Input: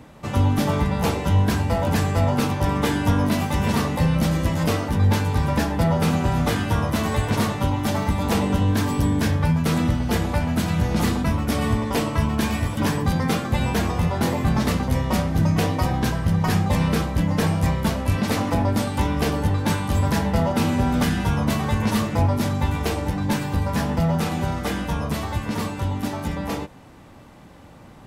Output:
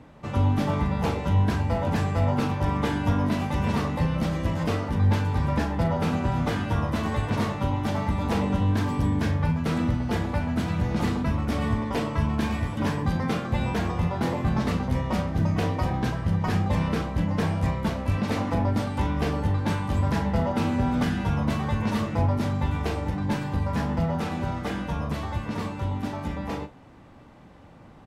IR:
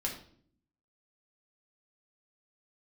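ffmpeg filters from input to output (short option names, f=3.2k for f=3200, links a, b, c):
-filter_complex "[0:a]aemphasis=mode=reproduction:type=50kf,asplit=2[a][b];[b]adelay=40,volume=-11dB[c];[a][c]amix=inputs=2:normalize=0,volume=-4dB"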